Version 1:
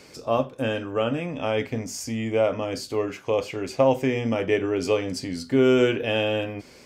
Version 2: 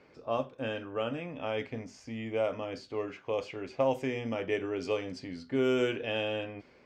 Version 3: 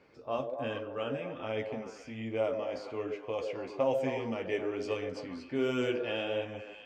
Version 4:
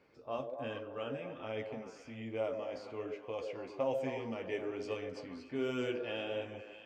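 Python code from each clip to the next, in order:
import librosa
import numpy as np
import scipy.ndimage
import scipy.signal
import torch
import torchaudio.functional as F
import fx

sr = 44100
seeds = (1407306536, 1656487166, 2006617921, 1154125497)

y1 = fx.env_lowpass(x, sr, base_hz=1900.0, full_db=-15.0)
y1 = fx.low_shelf(y1, sr, hz=330.0, db=-4.0)
y1 = y1 * librosa.db_to_amplitude(-7.5)
y2 = fx.echo_stepped(y1, sr, ms=131, hz=450.0, octaves=0.7, feedback_pct=70, wet_db=-3.0)
y2 = fx.chorus_voices(y2, sr, voices=2, hz=1.3, base_ms=12, depth_ms=3.4, mix_pct=30)
y3 = y2 + 10.0 ** (-20.5 / 20.0) * np.pad(y2, (int(629 * sr / 1000.0), 0))[:len(y2)]
y3 = y3 * librosa.db_to_amplitude(-5.0)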